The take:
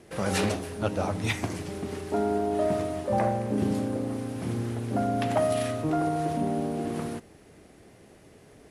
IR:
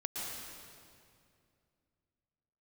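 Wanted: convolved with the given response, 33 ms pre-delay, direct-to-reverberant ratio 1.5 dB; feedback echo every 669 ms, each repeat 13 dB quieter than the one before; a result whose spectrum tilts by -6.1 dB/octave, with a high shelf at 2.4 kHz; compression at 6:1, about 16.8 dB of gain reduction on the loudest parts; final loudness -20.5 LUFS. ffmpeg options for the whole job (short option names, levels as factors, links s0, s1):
-filter_complex "[0:a]highshelf=f=2400:g=-6,acompressor=threshold=0.00891:ratio=6,aecho=1:1:669|1338|2007:0.224|0.0493|0.0108,asplit=2[s0][s1];[1:a]atrim=start_sample=2205,adelay=33[s2];[s1][s2]afir=irnorm=-1:irlink=0,volume=0.631[s3];[s0][s3]amix=inputs=2:normalize=0,volume=11.2"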